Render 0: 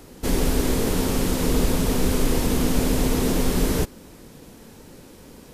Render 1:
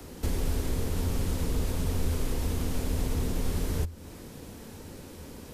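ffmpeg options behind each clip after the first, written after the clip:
-filter_complex "[0:a]equalizer=f=83:t=o:w=0.33:g=11.5,acrossover=split=300|1600|2100[s0][s1][s2][s3];[s0]alimiter=limit=0.1:level=0:latency=1:release=193[s4];[s4][s1][s2][s3]amix=inputs=4:normalize=0,acrossover=split=150[s5][s6];[s6]acompressor=threshold=0.0112:ratio=3[s7];[s5][s7]amix=inputs=2:normalize=0"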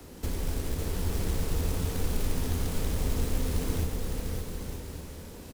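-filter_complex "[0:a]asplit=2[s0][s1];[s1]aecho=0:1:139|278|417|556|695|834:0.299|0.164|0.0903|0.0497|0.0273|0.015[s2];[s0][s2]amix=inputs=2:normalize=0,acrusher=bits=4:mode=log:mix=0:aa=0.000001,asplit=2[s3][s4];[s4]aecho=0:1:560|924|1161|1314|1414:0.631|0.398|0.251|0.158|0.1[s5];[s3][s5]amix=inputs=2:normalize=0,volume=0.708"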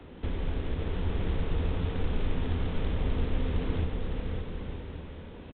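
-af "aresample=8000,aresample=44100"

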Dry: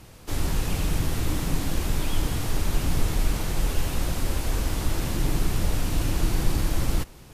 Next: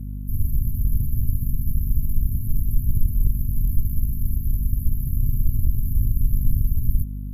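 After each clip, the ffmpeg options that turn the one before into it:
-af "afftfilt=real='re*(1-between(b*sr/4096,140,11000))':imag='im*(1-between(b*sr/4096,140,11000))':win_size=4096:overlap=0.75,aeval=exprs='val(0)+0.0224*(sin(2*PI*50*n/s)+sin(2*PI*2*50*n/s)/2+sin(2*PI*3*50*n/s)/3+sin(2*PI*4*50*n/s)/4+sin(2*PI*5*50*n/s)/5)':c=same,aeval=exprs='0.335*(cos(1*acos(clip(val(0)/0.335,-1,1)))-cos(1*PI/2))+0.0211*(cos(6*acos(clip(val(0)/0.335,-1,1)))-cos(6*PI/2))':c=same,volume=1.58"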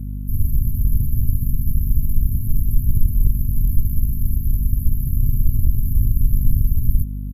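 -af "aresample=32000,aresample=44100,volume=1.5"

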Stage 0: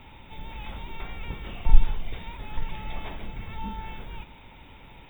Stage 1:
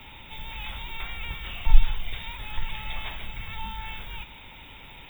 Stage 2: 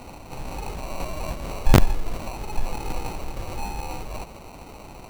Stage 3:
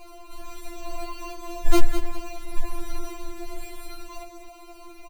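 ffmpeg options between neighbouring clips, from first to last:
-filter_complex "[0:a]highshelf=f=2100:g=12,acrossover=split=140|710[s0][s1][s2];[s1]acompressor=threshold=0.00224:ratio=6[s3];[s0][s3][s2]amix=inputs=3:normalize=0"
-af "acrusher=samples=26:mix=1:aa=0.000001,aeval=exprs='(mod(2.66*val(0)+1,2)-1)/2.66':c=same,volume=1.58"
-af "aecho=1:1:204|408|612|816:0.316|0.104|0.0344|0.0114,afftfilt=real='re*4*eq(mod(b,16),0)':imag='im*4*eq(mod(b,16),0)':win_size=2048:overlap=0.75,volume=0.891"

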